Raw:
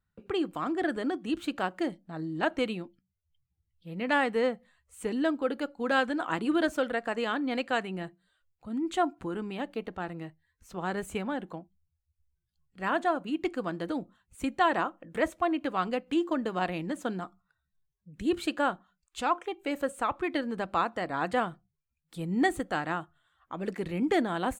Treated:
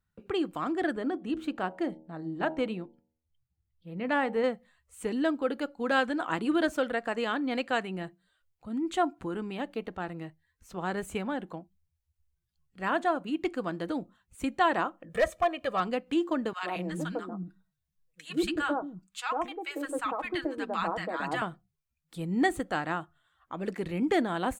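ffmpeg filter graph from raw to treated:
-filter_complex "[0:a]asettb=1/sr,asplit=3[a][b][c];[a]atrim=end=0.924[d];[b]atrim=start=0.92:end=4.44,asetpts=PTS-STARTPTS,afade=t=in:d=0.004:c=qsin,afade=t=out:st=3.516:d=0.004:c=qsin,highshelf=f=2.4k:g=-9,bandreject=f=79.17:t=h:w=4,bandreject=f=158.34:t=h:w=4,bandreject=f=237.51:t=h:w=4,bandreject=f=316.68:t=h:w=4,bandreject=f=395.85:t=h:w=4,bandreject=f=475.02:t=h:w=4,bandreject=f=554.19:t=h:w=4,bandreject=f=633.36:t=h:w=4,bandreject=f=712.53:t=h:w=4,bandreject=f=791.7:t=h:w=4,bandreject=f=870.87:t=h:w=4,bandreject=f=950.04:t=h:w=4[e];[c]atrim=start=4.436[f];[d][e]acrossfade=d=0.004:c1=hsin:c2=qsin[g];[g][f]acrossfade=d=0.004:c1=qsin:c2=hsin,asettb=1/sr,asplit=3[h][i][j];[h]atrim=end=15.094[k];[i]atrim=start=15.09:end=15.8,asetpts=PTS-STARTPTS,afade=t=in:d=0.004:c=qsin,afade=t=out:st=0.706:d=0.004:c=qsin,bandreject=f=1.1k:w=14,aecho=1:1:1.7:0.79,atrim=end_sample=31311,aeval=exprs='clip(val(0),-1,0.106)':c=same[l];[j]atrim=start=15.796[m];[k][l]acrossfade=d=0.004:c1=hsin:c2=qsin[n];[n][m]acrossfade=d=0.004:c1=qsin:c2=hsin,asettb=1/sr,asplit=3[o][p][q];[o]atrim=end=16.534[r];[p]atrim=start=16.53:end=21.42,asetpts=PTS-STARTPTS,afade=t=in:d=0.004:c=qsin,afade=t=out:st=4.886:d=0.004:c=qsin,aecho=1:1:6.3:0.45,atrim=end_sample=215649,acrossover=split=270|990[s][t][u];[t]adelay=100[v];[s]adelay=230[w];[w][v][u]amix=inputs=3:normalize=0,atrim=end_sample=215649[x];[q]atrim=start=21.416[y];[r][x]acrossfade=d=0.004:c1=hsin:c2=qsin[z];[z][y]acrossfade=d=0.004:c1=qsin:c2=hsin"

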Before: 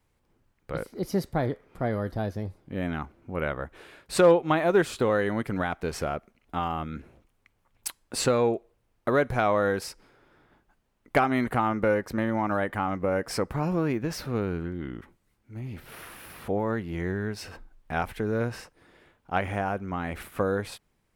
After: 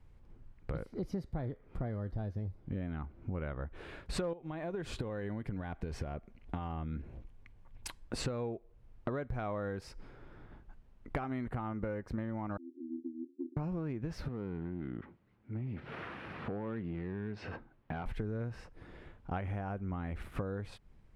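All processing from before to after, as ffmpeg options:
-filter_complex "[0:a]asettb=1/sr,asplit=3[a][b][c];[a]atrim=end=4.334[d];[b]atrim=start=4.33:end=8.04,asetpts=PTS-STARTPTS,afade=t=in:d=0.004:c=qsin,afade=t=out:st=3.706:d=0.004:c=qsin,bandreject=f=1.3k:w=9.6,acompressor=threshold=-29dB:ratio=6:attack=3.2:release=140:knee=1:detection=peak[e];[c]atrim=start=8.036[f];[d][e]acrossfade=d=0.004:c1=hsin:c2=qsin[g];[g][f]acrossfade=d=0.004:c1=qsin:c2=hsin,asettb=1/sr,asplit=3[h][i][j];[h]atrim=end=12.574[k];[i]atrim=start=12.57:end=13.57,asetpts=PTS-STARTPTS,afade=t=in:d=0.004:c=qsin,afade=t=out:st=0.996:d=0.004:c=qsin,asuperpass=centerf=310:order=8:qfactor=7.1,aeval=exprs='val(0)*sin(2*PI*39*n/s)':c=same[l];[j]atrim=start=13.566[m];[k][l]acrossfade=d=0.004:c1=hsin:c2=qsin[n];[n][m]acrossfade=d=0.004:c1=qsin:c2=hsin,asettb=1/sr,asplit=3[o][p][q];[o]atrim=end=14.284[r];[p]atrim=start=14.28:end=18.06,asetpts=PTS-STARTPTS,afade=t=in:d=0.004:c=qsin,afade=t=out:st=3.776:d=0.004:c=qsin,acompressor=threshold=-35dB:ratio=2:attack=3.2:release=140:knee=1:detection=peak,volume=31.5dB,asoftclip=hard,volume=-31.5dB,highpass=150,lowpass=3.1k[s];[q]atrim=start=18.056[t];[r][s]acrossfade=d=0.004:c1=hsin:c2=qsin[u];[u][t]acrossfade=d=0.004:c1=qsin:c2=hsin,aemphasis=mode=reproduction:type=bsi,acompressor=threshold=-37dB:ratio=6,volume=1.5dB"

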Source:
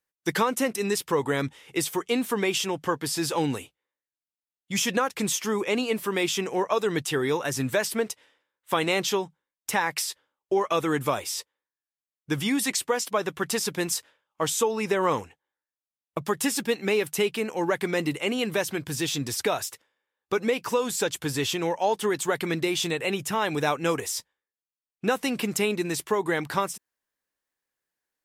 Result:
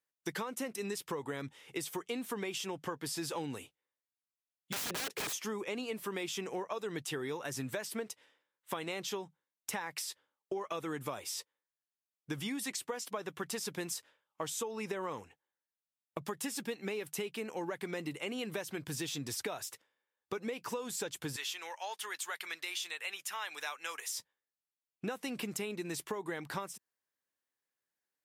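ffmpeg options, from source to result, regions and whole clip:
-filter_complex "[0:a]asettb=1/sr,asplit=3[a][b][c];[a]atrim=end=4.724[d];[b]atrim=start=4.72:end=5.33,asetpts=PTS-STARTPTS,afade=t=in:d=0.004:c=qsin,afade=t=out:st=0.606:d=0.004:c=qsin,highpass=130,equalizer=f=410:w=2.1:g=15,aeval=exprs='(mod(12.6*val(0)+1,2)-1)/12.6':c=same[e];[c]atrim=start=5.326[f];[d][e]acrossfade=d=0.004:c1=hsin:c2=qsin[g];[g][f]acrossfade=d=0.004:c1=qsin:c2=hsin,asettb=1/sr,asplit=3[h][i][j];[h]atrim=end=21.364[k];[i]atrim=start=21.36:end=24.15,asetpts=PTS-STARTPTS,afade=t=in:d=0.004:c=qsin,afade=t=out:st=2.786:d=0.004:c=qsin,highpass=1.3k,bandreject=f=7.9k:w=23[l];[j]atrim=start=24.146[m];[k][l]acrossfade=d=0.004:c1=hsin:c2=qsin[n];[n][m]acrossfade=d=0.004:c1=qsin:c2=hsin,highpass=86,acompressor=threshold=-30dB:ratio=5,volume=-5.5dB"

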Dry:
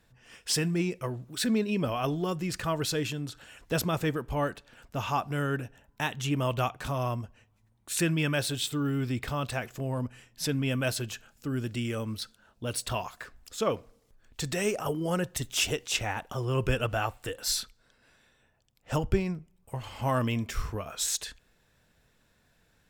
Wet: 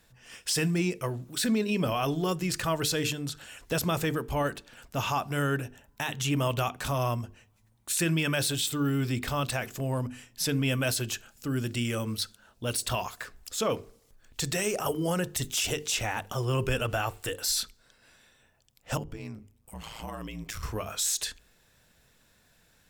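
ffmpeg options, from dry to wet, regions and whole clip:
-filter_complex "[0:a]asettb=1/sr,asplit=3[a][b][c];[a]atrim=end=18.974[d];[b]atrim=start=18.97:end=20.63,asetpts=PTS-STARTPTS,afade=t=in:d=0.004:c=qsin,afade=t=out:st=1.656:d=0.004:c=qsin,acompressor=threshold=-35dB:ratio=5:attack=3.2:release=140:knee=1:detection=peak,aeval=exprs='val(0)*sin(2*PI*56*n/s)':c=same[e];[c]atrim=start=20.626[f];[d][e]acrossfade=d=0.004:c1=hsin:c2=qsin[g];[g][f]acrossfade=d=0.004:c1=qsin:c2=hsin,highshelf=f=3.8k:g=7,bandreject=f=50:t=h:w=6,bandreject=f=100:t=h:w=6,bandreject=f=150:t=h:w=6,bandreject=f=200:t=h:w=6,bandreject=f=250:t=h:w=6,bandreject=f=300:t=h:w=6,bandreject=f=350:t=h:w=6,bandreject=f=400:t=h:w=6,bandreject=f=450:t=h:w=6,alimiter=limit=-20.5dB:level=0:latency=1:release=25,volume=2dB"

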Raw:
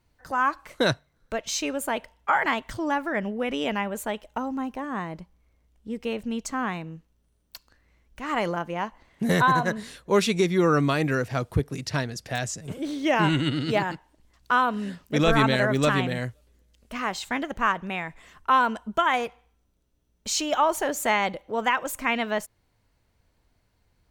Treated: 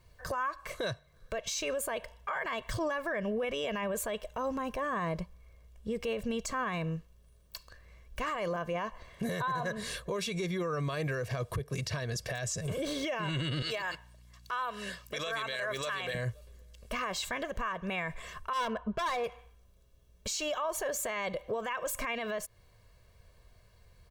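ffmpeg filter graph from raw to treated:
-filter_complex "[0:a]asettb=1/sr,asplit=3[a][b][c];[a]atrim=end=13.624[d];[b]atrim=start=13.62:end=16.15,asetpts=PTS-STARTPTS,afade=t=in:d=0.004:c=qsin,afade=t=out:st=2.526:d=0.004:c=qsin,highpass=f=1.3k:p=1,aeval=exprs='val(0)+0.000708*(sin(2*PI*60*n/s)+sin(2*PI*2*60*n/s)/2+sin(2*PI*3*60*n/s)/3+sin(2*PI*4*60*n/s)/4+sin(2*PI*5*60*n/s)/5)':c=same[e];[c]atrim=start=16.146[f];[d][e]acrossfade=d=0.004:c1=hsin:c2=qsin[g];[g][f]acrossfade=d=0.004:c1=qsin:c2=hsin,asettb=1/sr,asplit=3[h][i][j];[h]atrim=end=18.534[k];[i]atrim=start=18.53:end=19.24,asetpts=PTS-STARTPTS,afade=t=in:d=0.004:c=qsin,afade=t=out:st=0.706:d=0.004:c=qsin,lowpass=2.4k,asoftclip=type=hard:threshold=-24dB[l];[j]atrim=start=19.236[m];[k][l]acrossfade=d=0.004:c1=hsin:c2=qsin[n];[n][m]acrossfade=d=0.004:c1=qsin:c2=hsin,aecho=1:1:1.8:0.69,acompressor=threshold=-30dB:ratio=6,alimiter=level_in=6.5dB:limit=-24dB:level=0:latency=1:release=35,volume=-6.5dB,volume=4.5dB"

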